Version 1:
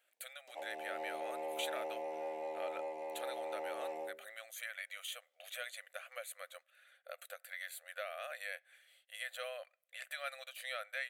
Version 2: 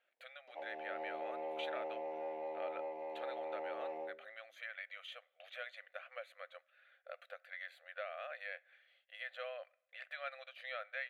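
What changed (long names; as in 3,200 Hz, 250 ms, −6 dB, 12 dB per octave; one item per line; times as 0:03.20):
speech: send +8.5 dB
master: add high-frequency loss of the air 300 metres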